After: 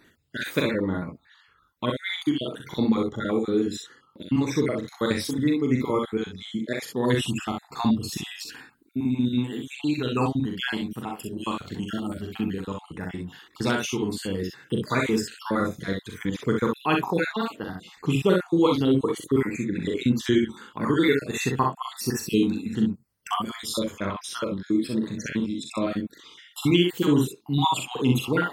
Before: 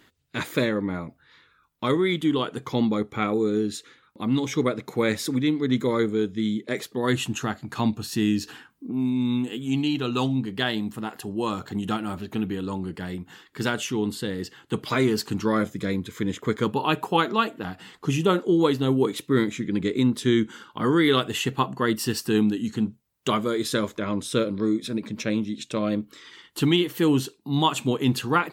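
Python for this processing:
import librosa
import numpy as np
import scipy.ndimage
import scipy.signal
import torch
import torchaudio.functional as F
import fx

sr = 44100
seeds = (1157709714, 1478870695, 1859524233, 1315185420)

y = fx.spec_dropout(x, sr, seeds[0], share_pct=49)
y = fx.room_early_taps(y, sr, ms=(41, 63), db=(-5.0, -4.5))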